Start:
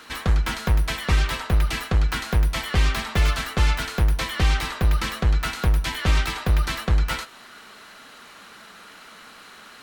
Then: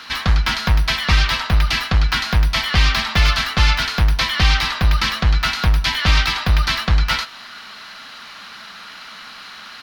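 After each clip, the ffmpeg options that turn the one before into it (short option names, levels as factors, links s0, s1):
-af "firequalizer=gain_entry='entry(210,0);entry(400,-8);entry(660,0);entry(1000,3);entry(4900,9);entry(7800,-7);entry(11000,-3)':delay=0.05:min_phase=1,volume=1.58"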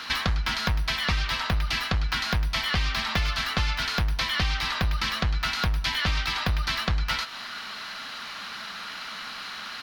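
-af "acompressor=threshold=0.0708:ratio=6"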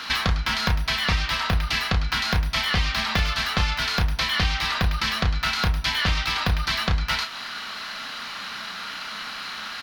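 -filter_complex "[0:a]asplit=2[s0][s1];[s1]adelay=32,volume=0.422[s2];[s0][s2]amix=inputs=2:normalize=0,volume=1.33"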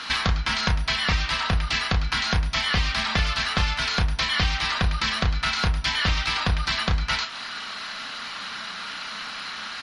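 -ar 48000 -c:a libmp3lame -b:a 48k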